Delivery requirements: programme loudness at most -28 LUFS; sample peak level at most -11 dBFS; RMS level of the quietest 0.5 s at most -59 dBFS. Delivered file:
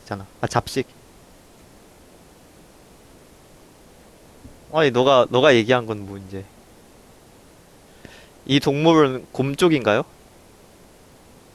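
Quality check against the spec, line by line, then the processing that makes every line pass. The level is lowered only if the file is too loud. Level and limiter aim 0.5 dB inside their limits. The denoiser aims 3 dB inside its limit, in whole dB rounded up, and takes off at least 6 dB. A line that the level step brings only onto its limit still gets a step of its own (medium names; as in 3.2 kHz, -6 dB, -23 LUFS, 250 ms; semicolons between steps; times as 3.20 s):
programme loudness -19.0 LUFS: fail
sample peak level -3.0 dBFS: fail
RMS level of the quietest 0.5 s -49 dBFS: fail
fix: noise reduction 6 dB, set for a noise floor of -49 dBFS; trim -9.5 dB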